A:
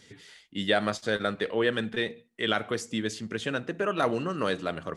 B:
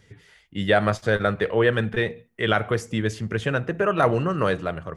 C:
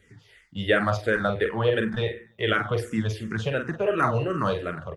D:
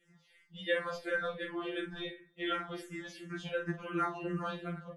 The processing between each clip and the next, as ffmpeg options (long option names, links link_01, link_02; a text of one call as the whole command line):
ffmpeg -i in.wav -af "equalizer=frequency=250:width_type=o:width=1:gain=-10,equalizer=frequency=4000:width_type=o:width=1:gain=-8,equalizer=frequency=8000:width_type=o:width=1:gain=-7,dynaudnorm=framelen=110:gausssize=9:maxgain=7dB,lowshelf=frequency=220:gain=11.5" out.wav
ffmpeg -i in.wav -filter_complex "[0:a]asplit=2[link_01][link_02];[link_02]adelay=45,volume=-7dB[link_03];[link_01][link_03]amix=inputs=2:normalize=0,aecho=1:1:95|190|285:0.126|0.0466|0.0172,asplit=2[link_04][link_05];[link_05]afreqshift=-2.8[link_06];[link_04][link_06]amix=inputs=2:normalize=1" out.wav
ffmpeg -i in.wav -af "afftfilt=real='re*2.83*eq(mod(b,8),0)':imag='im*2.83*eq(mod(b,8),0)':win_size=2048:overlap=0.75,volume=-7.5dB" out.wav